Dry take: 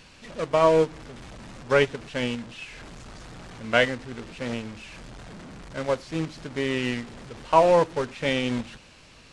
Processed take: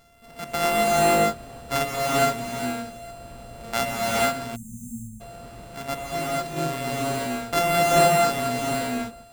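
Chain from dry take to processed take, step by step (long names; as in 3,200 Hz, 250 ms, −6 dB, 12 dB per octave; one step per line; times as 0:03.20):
samples sorted by size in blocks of 64 samples
reverb whose tail is shaped and stops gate 500 ms rising, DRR −6 dB
time-frequency box erased 0:04.56–0:05.21, 240–6,200 Hz
level −6.5 dB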